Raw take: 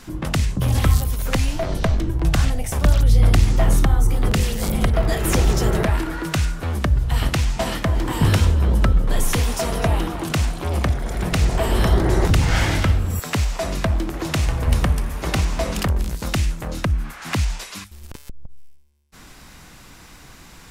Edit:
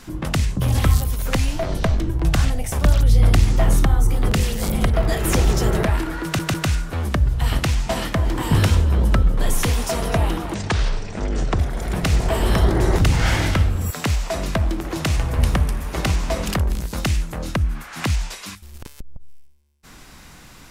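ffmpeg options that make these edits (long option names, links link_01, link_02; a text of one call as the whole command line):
ffmpeg -i in.wav -filter_complex "[0:a]asplit=5[link_01][link_02][link_03][link_04][link_05];[link_01]atrim=end=6.392[link_06];[link_02]atrim=start=6.238:end=6.392[link_07];[link_03]atrim=start=6.238:end=10.244[link_08];[link_04]atrim=start=10.24:end=10.88,asetpts=PTS-STARTPTS,asetrate=26901,aresample=44100[link_09];[link_05]atrim=start=10.876[link_10];[link_06][link_07]acrossfade=duration=0.004:curve1=hsin:curve2=hsin[link_11];[link_11][link_08]acrossfade=duration=0.004:curve1=hsin:curve2=hsin[link_12];[link_12][link_09]acrossfade=duration=0.004:curve1=hsin:curve2=hsin[link_13];[link_13][link_10]acrossfade=duration=0.004:curve1=hsin:curve2=hsin" out.wav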